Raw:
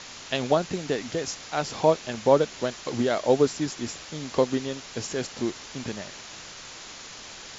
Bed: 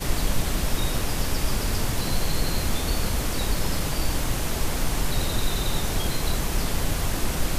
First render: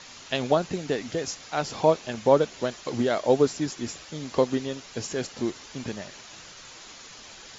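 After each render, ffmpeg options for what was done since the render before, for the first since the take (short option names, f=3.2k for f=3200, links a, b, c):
-af "afftdn=nr=6:nf=-43"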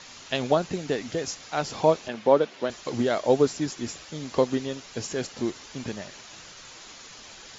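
-filter_complex "[0:a]asettb=1/sr,asplit=3[a][b][c];[a]atrim=end=2.084[d];[b]atrim=start=2.08:end=2.7,asetpts=PTS-STARTPTS,afade=t=in:d=0.004:c=qsin,afade=t=out:st=0.616:d=0.004:c=qsin,highpass=200,lowpass=4.1k[e];[c]atrim=start=2.696[f];[d][e]acrossfade=d=0.004:c1=hsin:c2=qsin[g];[g][f]acrossfade=d=0.004:c1=qsin:c2=hsin"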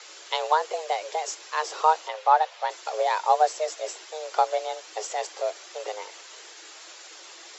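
-af "afreqshift=310"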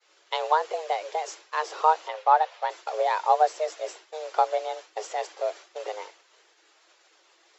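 -af "agate=range=-33dB:threshold=-36dB:ratio=3:detection=peak,aemphasis=mode=reproduction:type=50kf"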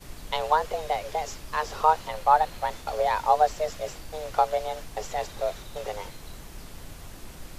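-filter_complex "[1:a]volume=-17.5dB[a];[0:a][a]amix=inputs=2:normalize=0"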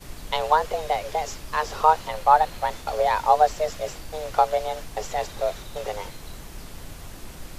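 -af "volume=3dB"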